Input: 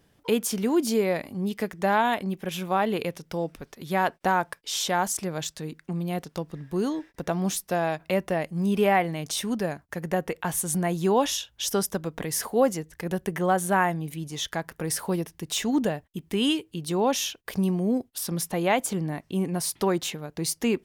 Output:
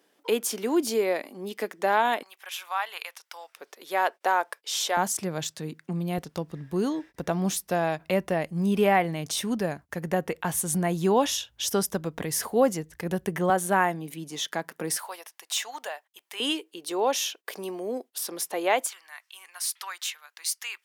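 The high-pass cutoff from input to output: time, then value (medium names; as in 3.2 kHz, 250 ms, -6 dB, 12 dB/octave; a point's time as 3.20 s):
high-pass 24 dB/octave
280 Hz
from 2.23 s 920 Hz
from 3.56 s 400 Hz
from 4.97 s 99 Hz
from 6.18 s 45 Hz
from 13.50 s 190 Hz
from 14.97 s 720 Hz
from 16.40 s 350 Hz
from 18.87 s 1.2 kHz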